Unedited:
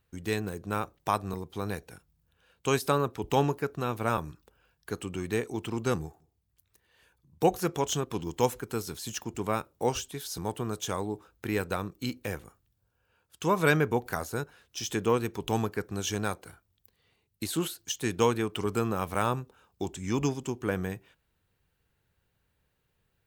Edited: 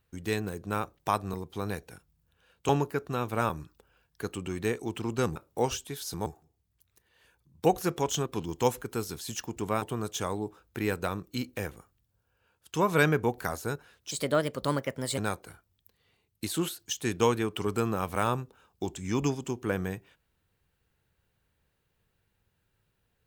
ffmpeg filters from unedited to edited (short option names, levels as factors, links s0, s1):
-filter_complex "[0:a]asplit=7[s0][s1][s2][s3][s4][s5][s6];[s0]atrim=end=2.692[s7];[s1]atrim=start=3.368:end=6.042[s8];[s2]atrim=start=9.598:end=10.502[s9];[s3]atrim=start=6.038:end=9.602[s10];[s4]atrim=start=10.498:end=14.794[s11];[s5]atrim=start=14.79:end=16.17,asetpts=PTS-STARTPTS,asetrate=56889,aresample=44100[s12];[s6]atrim=start=16.166[s13];[s7][s8]acrossfade=d=0.004:c1=hsin:c2=hsin[s14];[s14][s9]acrossfade=d=0.004:c1=hsin:c2=hsin[s15];[s15][s10]acrossfade=d=0.004:c1=hsin:c2=hsin[s16];[s16][s11]acrossfade=d=0.004:c1=hsin:c2=hsin[s17];[s17][s12]acrossfade=d=0.004:c1=hsin:c2=hsin[s18];[s18][s13]acrossfade=d=0.004:c1=hsin:c2=hsin"